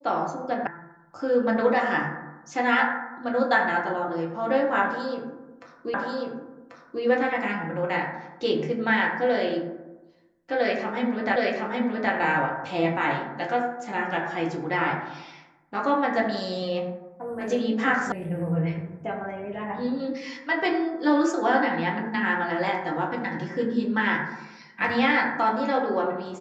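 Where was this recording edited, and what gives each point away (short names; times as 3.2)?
0.67 sound cut off
5.94 repeat of the last 1.09 s
11.36 repeat of the last 0.77 s
18.12 sound cut off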